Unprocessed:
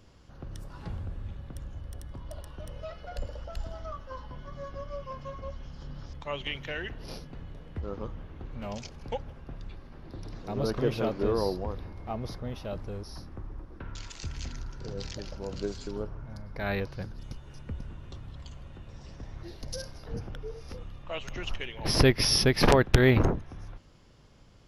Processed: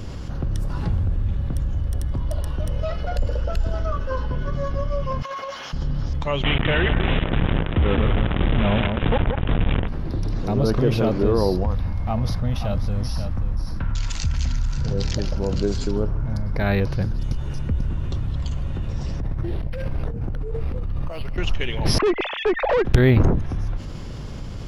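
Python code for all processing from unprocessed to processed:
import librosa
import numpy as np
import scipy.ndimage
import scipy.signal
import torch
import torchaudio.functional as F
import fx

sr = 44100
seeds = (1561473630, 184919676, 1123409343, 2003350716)

y = fx.chain(x, sr, fx.notch(hz=760.0, q=7.5),
    fx.small_body(hz=(440.0, 1500.0, 2600.0), ring_ms=20, db=7), at=(3.29, 4.56))
y = fx.chain(y, sr, fx.highpass(hz=960.0, slope=12),
    fx.over_compress(threshold_db=-48.0, ratio=-0.5), at=(5.22, 5.73))
y = fx.chain(y, sr, fx.quant_companded(bits=2),
    fx.echo_alternate(ms=178, hz=2100.0, feedback_pct=54, wet_db=-10.5),
    fx.resample_bad(factor=6, down='none', up='filtered'), at=(6.43, 9.88))
y = fx.chain(y, sr, fx.peak_eq(hz=380.0, db=-13.5, octaves=0.68),
    fx.echo_single(ms=534, db=-10.0), at=(11.63, 14.91))
y = fx.chain(y, sr, fx.air_absorb(metres=170.0),
    fx.over_compress(threshold_db=-44.0, ratio=-1.0),
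    fx.resample_linear(factor=6), at=(19.2, 21.38))
y = fx.chain(y, sr, fx.sine_speech(),
    fx.high_shelf(hz=2800.0, db=-11.5),
    fx.tube_stage(drive_db=22.0, bias=0.35), at=(21.98, 22.85))
y = fx.low_shelf(y, sr, hz=280.0, db=8.5)
y = fx.env_flatten(y, sr, amount_pct=50)
y = y * 10.0 ** (-2.5 / 20.0)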